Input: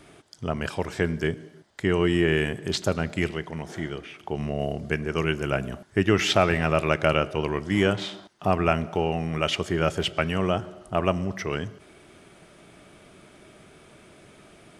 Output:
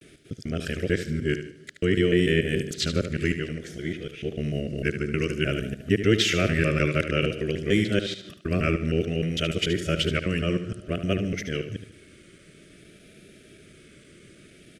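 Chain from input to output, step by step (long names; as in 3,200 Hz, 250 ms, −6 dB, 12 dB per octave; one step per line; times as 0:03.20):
reversed piece by piece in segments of 151 ms
Butterworth band-reject 900 Hz, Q 0.83
pitch vibrato 0.55 Hz 64 cents
on a send: repeating echo 74 ms, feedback 35%, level −10 dB
on the sum: level +1 dB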